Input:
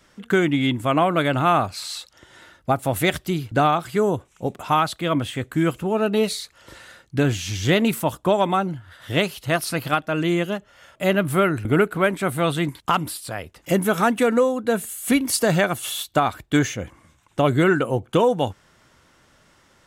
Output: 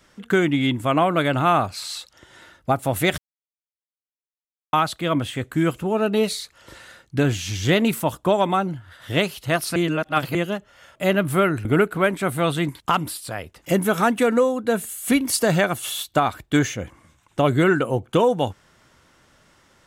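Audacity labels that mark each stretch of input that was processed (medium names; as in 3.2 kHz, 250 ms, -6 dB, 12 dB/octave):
3.180000	4.730000	mute
9.760000	10.350000	reverse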